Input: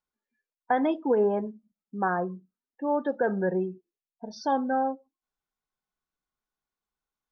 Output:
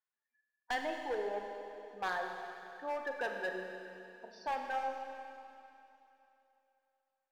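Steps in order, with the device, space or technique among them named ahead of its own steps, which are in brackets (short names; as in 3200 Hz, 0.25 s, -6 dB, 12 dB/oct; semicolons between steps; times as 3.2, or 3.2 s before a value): megaphone (BPF 650–3200 Hz; bell 1800 Hz +11.5 dB 0.22 oct; hard clip -25.5 dBFS, distortion -10 dB); reverb removal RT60 0.5 s; Schroeder reverb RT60 3 s, combs from 33 ms, DRR 3 dB; gain -6 dB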